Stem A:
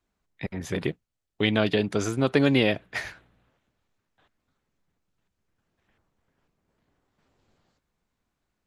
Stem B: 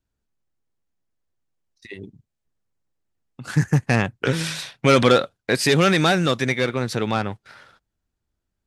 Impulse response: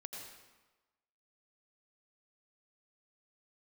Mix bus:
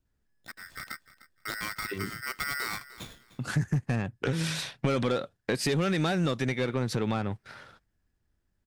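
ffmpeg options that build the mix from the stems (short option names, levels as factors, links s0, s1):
-filter_complex "[0:a]adynamicsmooth=sensitivity=6.5:basefreq=3400,aeval=exprs='val(0)*sgn(sin(2*PI*1700*n/s))':c=same,adelay=50,volume=0.224,asplit=2[s0][s1];[s1]volume=0.133[s2];[1:a]acompressor=threshold=0.0562:ratio=5,volume=0.794[s3];[s2]aecho=0:1:302|604|906|1208:1|0.22|0.0484|0.0106[s4];[s0][s3][s4]amix=inputs=3:normalize=0,lowshelf=f=490:g=6,asoftclip=type=tanh:threshold=0.126"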